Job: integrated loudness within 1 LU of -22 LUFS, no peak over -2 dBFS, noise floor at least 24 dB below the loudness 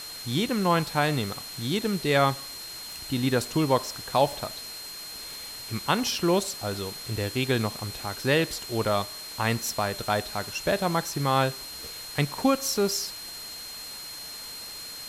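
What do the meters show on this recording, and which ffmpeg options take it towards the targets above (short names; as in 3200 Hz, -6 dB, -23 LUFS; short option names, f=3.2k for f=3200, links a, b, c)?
steady tone 4200 Hz; tone level -39 dBFS; noise floor -40 dBFS; noise floor target -52 dBFS; loudness -28.0 LUFS; peak -10.0 dBFS; loudness target -22.0 LUFS
-> -af "bandreject=f=4.2k:w=30"
-af "afftdn=nr=12:nf=-40"
-af "volume=6dB"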